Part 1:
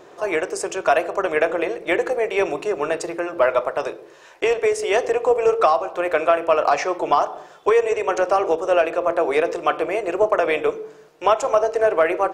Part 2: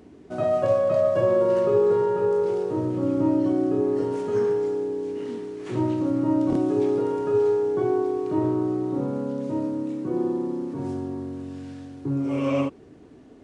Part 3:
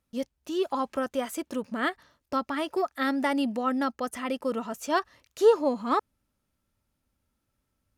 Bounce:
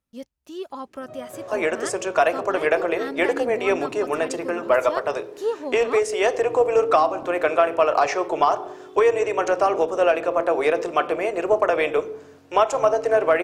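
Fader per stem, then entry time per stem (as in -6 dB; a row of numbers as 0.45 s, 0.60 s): -1.0 dB, -17.0 dB, -5.5 dB; 1.30 s, 0.70 s, 0.00 s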